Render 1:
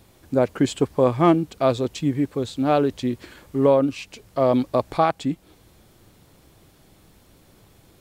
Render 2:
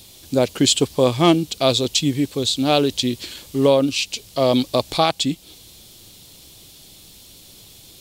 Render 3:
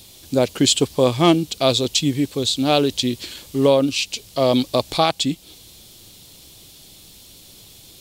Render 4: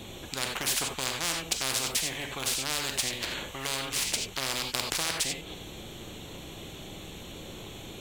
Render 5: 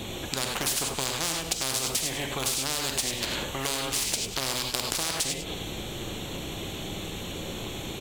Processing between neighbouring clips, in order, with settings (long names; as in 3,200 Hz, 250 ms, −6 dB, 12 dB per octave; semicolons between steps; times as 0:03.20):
high shelf with overshoot 2,400 Hz +13 dB, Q 1.5; level +2 dB
no processing that can be heard
adaptive Wiener filter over 9 samples; reverb whose tail is shaped and stops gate 110 ms flat, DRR 6 dB; every bin compressed towards the loudest bin 10 to 1; level −8.5 dB
dynamic equaliser 2,000 Hz, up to −5 dB, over −43 dBFS, Q 0.78; downward compressor 4 to 1, threshold −32 dBFS, peak gain reduction 7.5 dB; on a send: single-tap delay 106 ms −10 dB; on the sum: level +7 dB